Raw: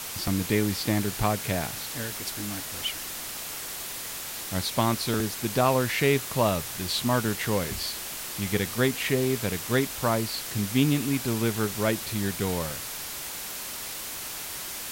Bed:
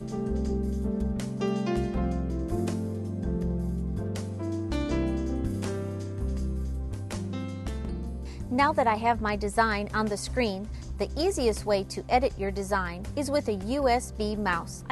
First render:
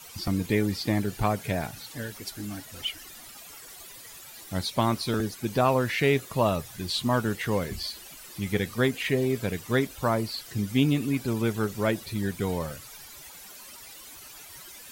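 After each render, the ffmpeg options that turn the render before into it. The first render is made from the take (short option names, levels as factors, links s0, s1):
-af "afftdn=nr=14:nf=-36"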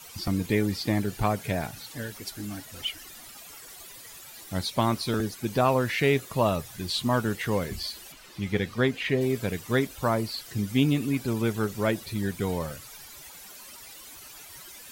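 -filter_complex "[0:a]asettb=1/sr,asplit=3[s0][s1][s2];[s0]atrim=end=8.124[s3];[s1]atrim=start=8.12:end=9.21,asetpts=PTS-STARTPTS,afade=t=in:d=0.004:c=qsin,afade=t=out:st=1.086:d=0.004:c=qsin,acrossover=split=5600[s4][s5];[s5]acompressor=threshold=0.00158:ratio=4:attack=1:release=60[s6];[s4][s6]amix=inputs=2:normalize=0[s7];[s2]atrim=start=9.206[s8];[s3][s7]acrossfade=d=0.004:c1=hsin:c2=qsin[s9];[s9][s8]acrossfade=d=0.004:c1=qsin:c2=hsin"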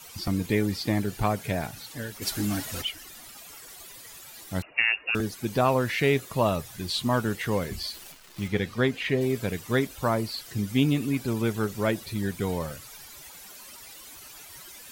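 -filter_complex "[0:a]asplit=3[s0][s1][s2];[s0]afade=t=out:st=2.21:d=0.02[s3];[s1]aeval=exprs='0.1*sin(PI/2*1.78*val(0)/0.1)':c=same,afade=t=in:st=2.21:d=0.02,afade=t=out:st=2.81:d=0.02[s4];[s2]afade=t=in:st=2.81:d=0.02[s5];[s3][s4][s5]amix=inputs=3:normalize=0,asettb=1/sr,asplit=3[s6][s7][s8];[s6]atrim=end=4.624[s9];[s7]atrim=start=4.62:end=5.15,asetpts=PTS-STARTPTS,afade=t=in:d=0.004:c=qsin,afade=t=out:st=0.526:d=0.004:c=qsin,lowpass=f=2500:t=q:w=0.5098,lowpass=f=2500:t=q:w=0.6013,lowpass=f=2500:t=q:w=0.9,lowpass=f=2500:t=q:w=2.563,afreqshift=-2900[s10];[s8]atrim=start=5.146[s11];[s9][s10]acrossfade=d=0.004:c1=hsin:c2=qsin[s12];[s12][s11]acrossfade=d=0.004:c1=qsin:c2=hsin,asettb=1/sr,asplit=3[s13][s14][s15];[s13]atrim=end=7.944[s16];[s14]atrim=start=7.94:end=8.48,asetpts=PTS-STARTPTS,afade=t=in:d=0.004:c=qsin,afade=t=out:st=0.536:d=0.004:c=qsin,acrusher=bits=8:dc=4:mix=0:aa=0.000001[s17];[s15]atrim=start=8.476[s18];[s16][s17]acrossfade=d=0.004:c1=hsin:c2=qsin[s19];[s19][s18]acrossfade=d=0.004:c1=qsin:c2=hsin"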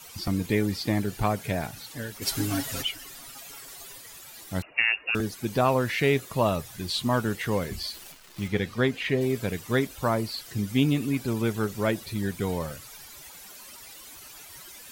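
-filter_complex "[0:a]asettb=1/sr,asplit=3[s0][s1][s2];[s0]atrim=end=2.254[s3];[s1]atrim=start=2.25:end=3.98,asetpts=PTS-STARTPTS,afade=t=in:d=0.004:c=qsin,afade=t=out:st=1.726:d=0.004:c=qsin,aecho=1:1:7.3:0.73,atrim=end_sample=76293[s4];[s2]atrim=start=3.976[s5];[s3][s4]acrossfade=d=0.004:c1=hsin:c2=qsin[s6];[s6][s5]acrossfade=d=0.004:c1=qsin:c2=hsin"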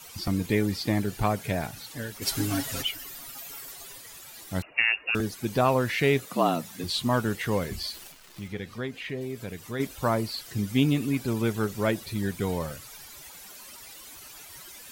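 -filter_complex "[0:a]asettb=1/sr,asplit=3[s0][s1][s2];[s0]atrim=end=2.854[s3];[s1]atrim=start=2.85:end=3.72,asetpts=PTS-STARTPTS,afade=t=in:d=0.004:c=qsin,afade=t=out:st=0.866:d=0.004:c=qsin,equalizer=f=14000:t=o:w=0.26:g=8.5[s4];[s2]atrim=start=3.716[s5];[s3][s4]acrossfade=d=0.004:c1=hsin:c2=qsin[s6];[s6][s5]acrossfade=d=0.004:c1=qsin:c2=hsin,asettb=1/sr,asplit=3[s7][s8][s9];[s7]atrim=end=6.264[s10];[s8]atrim=start=6.26:end=6.84,asetpts=PTS-STARTPTS,afade=t=in:d=0.004:c=qsin,afade=t=out:st=0.576:d=0.004:c=qsin,afreqshift=78[s11];[s9]atrim=start=6.836[s12];[s10][s11]acrossfade=d=0.004:c1=hsin:c2=qsin[s13];[s13][s12]acrossfade=d=0.004:c1=qsin:c2=hsin,asplit=3[s14][s15][s16];[s14]afade=t=out:st=8.07:d=0.02[s17];[s15]acompressor=threshold=0.00562:ratio=1.5:attack=3.2:release=140:knee=1:detection=peak,afade=t=in:st=8.07:d=0.02,afade=t=out:st=9.79:d=0.02[s18];[s16]afade=t=in:st=9.79:d=0.02[s19];[s17][s18][s19]amix=inputs=3:normalize=0"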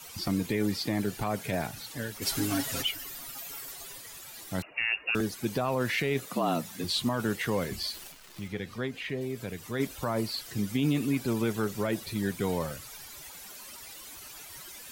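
-filter_complex "[0:a]acrossover=split=130[s0][s1];[s0]acompressor=threshold=0.00708:ratio=6[s2];[s1]alimiter=limit=0.112:level=0:latency=1:release=18[s3];[s2][s3]amix=inputs=2:normalize=0"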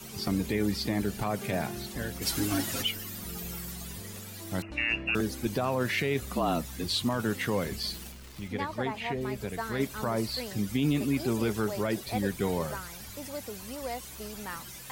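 -filter_complex "[1:a]volume=0.237[s0];[0:a][s0]amix=inputs=2:normalize=0"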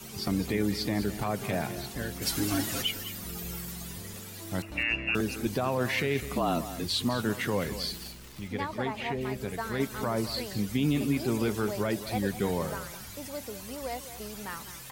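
-af "aecho=1:1:207:0.237"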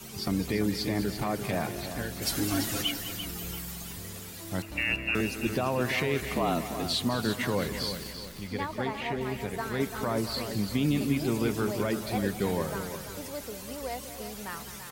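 -af "aecho=1:1:340|680|1020|1360:0.335|0.127|0.0484|0.0184"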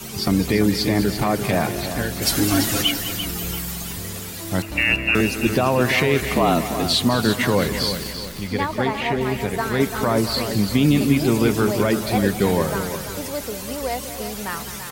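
-af "volume=3.16"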